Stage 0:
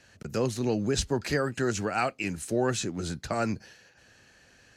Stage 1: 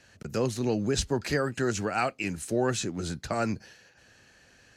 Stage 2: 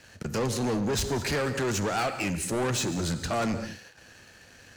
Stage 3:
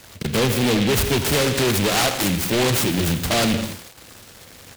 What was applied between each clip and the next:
no processing that can be heard
soft clipping −26 dBFS, distortion −11 dB; reverb whose tail is shaped and stops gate 240 ms flat, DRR 10.5 dB; leveller curve on the samples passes 2
single-tap delay 85 ms −13.5 dB; short delay modulated by noise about 2,600 Hz, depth 0.17 ms; level +8.5 dB

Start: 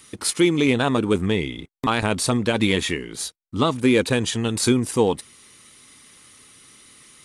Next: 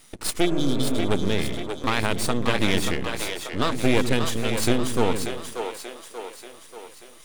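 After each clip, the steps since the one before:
half-wave rectification
healed spectral selection 0:00.48–0:01.01, 400–3,000 Hz after
echo with a time of its own for lows and highs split 370 Hz, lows 122 ms, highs 585 ms, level −6 dB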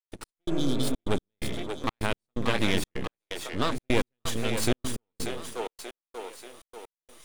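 gate pattern ".x..xxxx" 127 BPM −60 dB
level −3.5 dB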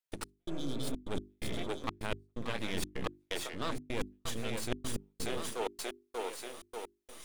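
reversed playback
downward compressor 6 to 1, threshold −33 dBFS, peak gain reduction 15 dB
reversed playback
mains-hum notches 50/100/150/200/250/300/350/400 Hz
level +2 dB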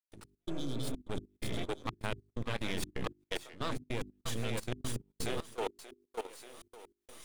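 parametric band 120 Hz +6.5 dB 0.29 octaves
output level in coarse steps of 18 dB
level +2.5 dB

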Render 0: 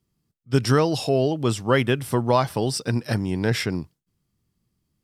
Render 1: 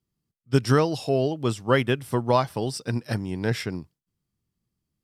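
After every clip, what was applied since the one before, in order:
expander for the loud parts 1.5 to 1, over −29 dBFS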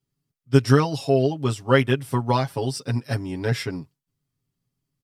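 comb filter 7.3 ms, depth 99%
level −1.5 dB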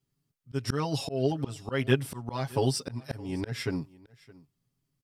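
volume swells 297 ms
single-tap delay 617 ms −22.5 dB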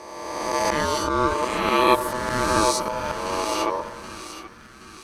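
peak hold with a rise ahead of every peak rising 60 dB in 1.78 s
echo with a time of its own for lows and highs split 410 Hz, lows 119 ms, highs 774 ms, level −11 dB
ring modulation 750 Hz
level +6 dB

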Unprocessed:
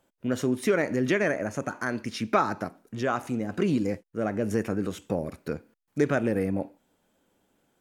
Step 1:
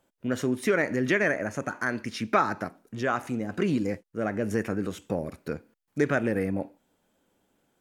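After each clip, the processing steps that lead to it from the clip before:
dynamic equaliser 1,800 Hz, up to +5 dB, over −44 dBFS, Q 1.7
level −1 dB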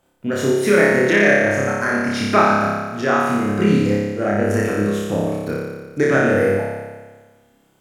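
flutter between parallel walls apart 5 metres, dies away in 1.4 s
level +5 dB

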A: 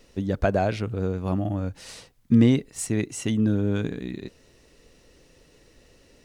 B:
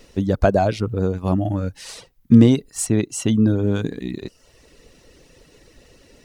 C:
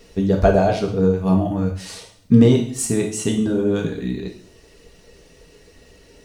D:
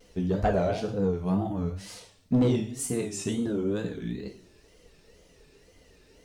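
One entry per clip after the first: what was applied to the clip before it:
reverb reduction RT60 0.62 s; dynamic equaliser 2,100 Hz, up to −7 dB, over −50 dBFS, Q 1.7; level +7 dB
coupled-rooms reverb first 0.58 s, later 2 s, from −27 dB, DRR 0 dB; level −1.5 dB
tape wow and flutter 140 cents; soft clipping −7 dBFS, distortion −17 dB; level −8.5 dB

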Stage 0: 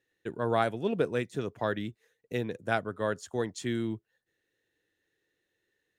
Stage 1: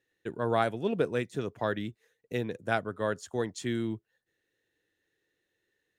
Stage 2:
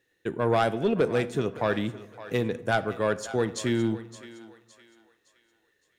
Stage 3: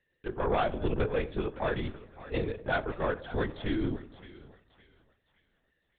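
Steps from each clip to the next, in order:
no processing that can be heard
soft clipping −21.5 dBFS, distortion −14 dB; feedback echo with a high-pass in the loop 564 ms, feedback 39%, high-pass 550 Hz, level −14 dB; convolution reverb RT60 1.1 s, pre-delay 12 ms, DRR 14.5 dB; level +6.5 dB
linear-prediction vocoder at 8 kHz whisper; level −4.5 dB

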